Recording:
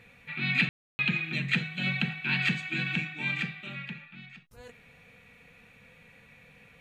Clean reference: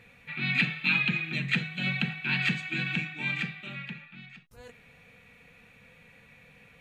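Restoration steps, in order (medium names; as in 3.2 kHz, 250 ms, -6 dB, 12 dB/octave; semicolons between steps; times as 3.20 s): room tone fill 0.69–0.99 s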